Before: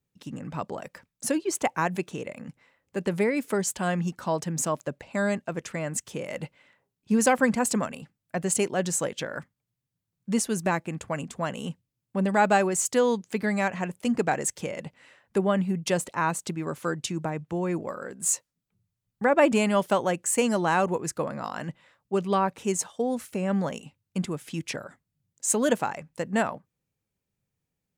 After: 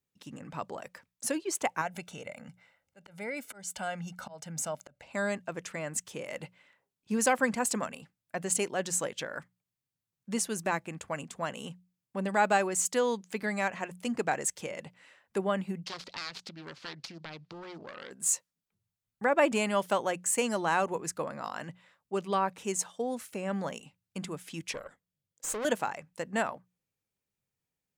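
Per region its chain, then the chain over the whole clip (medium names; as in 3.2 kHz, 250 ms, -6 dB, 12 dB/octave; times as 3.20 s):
1.81–5.02 s: comb 1.4 ms, depth 61% + compression 1.5:1, threshold -34 dBFS + slow attack 243 ms
15.85–18.11 s: self-modulated delay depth 0.77 ms + compression 4:1, threshold -36 dBFS + resonant low-pass 4.6 kHz, resonance Q 3.1
24.72–25.65 s: hum notches 60/120/180 Hz + small resonant body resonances 490/3300 Hz, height 9 dB, ringing for 20 ms + valve stage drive 27 dB, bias 0.65
whole clip: bass shelf 420 Hz -7 dB; hum notches 60/120/180 Hz; trim -2.5 dB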